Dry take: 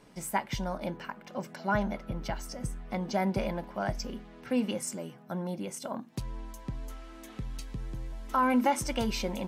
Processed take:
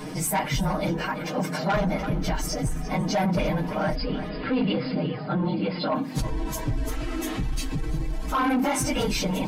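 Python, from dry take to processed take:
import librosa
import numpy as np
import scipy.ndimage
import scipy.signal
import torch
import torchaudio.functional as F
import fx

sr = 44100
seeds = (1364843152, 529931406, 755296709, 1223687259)

y = fx.phase_scramble(x, sr, seeds[0], window_ms=50)
y = fx.peak_eq(y, sr, hz=250.0, db=6.0, octaves=0.35)
y = y + 0.91 * np.pad(y, (int(6.5 * sr / 1000.0), 0))[:len(y)]
y = fx.rider(y, sr, range_db=4, speed_s=2.0)
y = 10.0 ** (-22.0 / 20.0) * np.tanh(y / 10.0 ** (-22.0 / 20.0))
y = fx.brickwall_lowpass(y, sr, high_hz=5200.0, at=(3.94, 5.94), fade=0.02)
y = y + 10.0 ** (-17.0 / 20.0) * np.pad(y, (int(339 * sr / 1000.0), 0))[:len(y)]
y = fx.env_flatten(y, sr, amount_pct=50)
y = y * 10.0 ** (2.5 / 20.0)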